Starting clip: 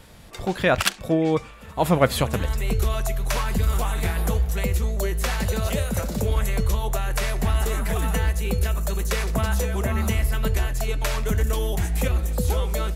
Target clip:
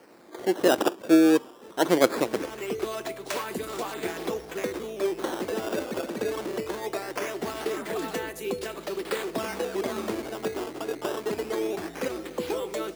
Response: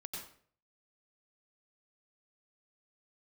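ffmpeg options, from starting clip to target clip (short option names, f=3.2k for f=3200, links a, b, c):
-af "acrusher=samples=12:mix=1:aa=0.000001:lfo=1:lforange=19.2:lforate=0.21,highpass=f=330:t=q:w=3.7,volume=-5dB"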